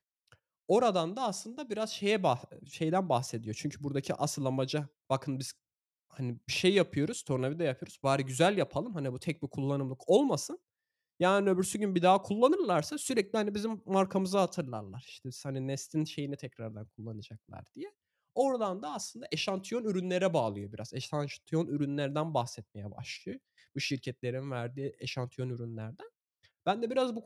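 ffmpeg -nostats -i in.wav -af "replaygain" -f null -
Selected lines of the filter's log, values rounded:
track_gain = +11.4 dB
track_peak = 0.188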